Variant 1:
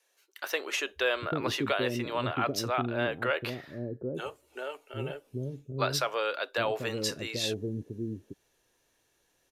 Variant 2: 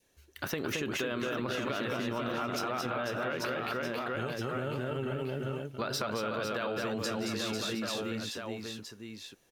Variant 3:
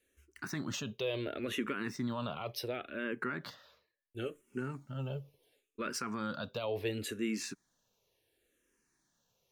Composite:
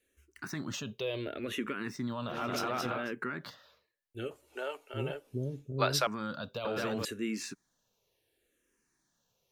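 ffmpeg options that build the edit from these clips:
ffmpeg -i take0.wav -i take1.wav -i take2.wav -filter_complex "[1:a]asplit=2[link_01][link_02];[2:a]asplit=4[link_03][link_04][link_05][link_06];[link_03]atrim=end=2.47[link_07];[link_01]atrim=start=2.23:end=3.15[link_08];[link_04]atrim=start=2.91:end=4.312[link_09];[0:a]atrim=start=4.308:end=6.072[link_10];[link_05]atrim=start=6.068:end=6.652[link_11];[link_02]atrim=start=6.648:end=7.052[link_12];[link_06]atrim=start=7.048[link_13];[link_07][link_08]acrossfade=duration=0.24:curve1=tri:curve2=tri[link_14];[link_14][link_09]acrossfade=duration=0.24:curve1=tri:curve2=tri[link_15];[link_15][link_10]acrossfade=duration=0.004:curve1=hsin:curve2=hsin[link_16];[link_16][link_11]acrossfade=duration=0.004:curve1=hsin:curve2=hsin[link_17];[link_17][link_12]acrossfade=duration=0.004:curve1=hsin:curve2=hsin[link_18];[link_18][link_13]acrossfade=duration=0.004:curve1=hsin:curve2=hsin" out.wav

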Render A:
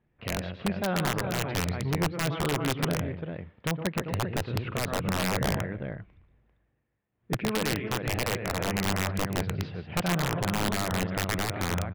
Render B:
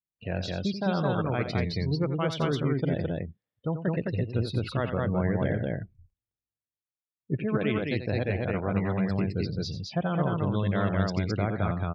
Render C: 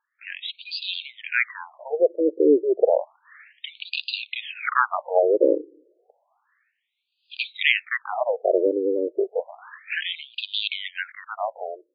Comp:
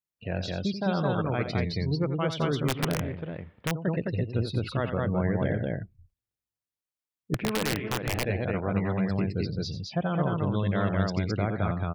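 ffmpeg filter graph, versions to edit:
ffmpeg -i take0.wav -i take1.wav -filter_complex "[0:a]asplit=2[link_01][link_02];[1:a]asplit=3[link_03][link_04][link_05];[link_03]atrim=end=2.682[link_06];[link_01]atrim=start=2.678:end=3.712[link_07];[link_04]atrim=start=3.708:end=7.342[link_08];[link_02]atrim=start=7.338:end=8.252[link_09];[link_05]atrim=start=8.248[link_10];[link_06][link_07]acrossfade=duration=0.004:curve1=hsin:curve2=hsin[link_11];[link_11][link_08]acrossfade=duration=0.004:curve1=hsin:curve2=hsin[link_12];[link_12][link_09]acrossfade=duration=0.004:curve1=hsin:curve2=hsin[link_13];[link_13][link_10]acrossfade=duration=0.004:curve1=hsin:curve2=hsin" out.wav

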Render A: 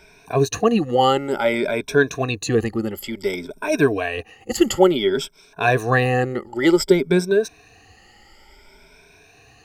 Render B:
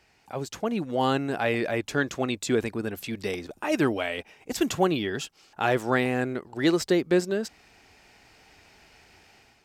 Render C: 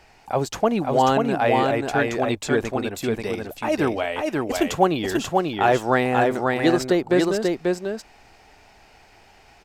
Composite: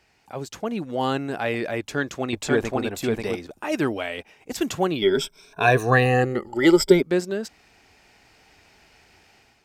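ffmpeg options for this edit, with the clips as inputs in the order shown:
ffmpeg -i take0.wav -i take1.wav -i take2.wav -filter_complex "[1:a]asplit=3[link_01][link_02][link_03];[link_01]atrim=end=2.332[link_04];[2:a]atrim=start=2.328:end=3.372[link_05];[link_02]atrim=start=3.368:end=5.022[link_06];[0:a]atrim=start=5.018:end=7.022[link_07];[link_03]atrim=start=7.018[link_08];[link_04][link_05]acrossfade=duration=0.004:curve1=hsin:curve2=hsin[link_09];[link_09][link_06]acrossfade=duration=0.004:curve1=hsin:curve2=hsin[link_10];[link_10][link_07]acrossfade=duration=0.004:curve1=hsin:curve2=hsin[link_11];[link_11][link_08]acrossfade=duration=0.004:curve1=hsin:curve2=hsin" out.wav

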